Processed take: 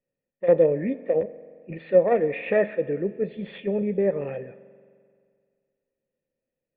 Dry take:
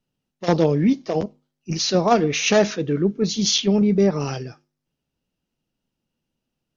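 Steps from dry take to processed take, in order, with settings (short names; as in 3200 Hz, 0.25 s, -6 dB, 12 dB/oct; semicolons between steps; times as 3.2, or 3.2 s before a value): self-modulated delay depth 0.085 ms; vocal tract filter e; spring tank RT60 2.1 s, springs 43 ms, chirp 45 ms, DRR 16.5 dB; gain +8 dB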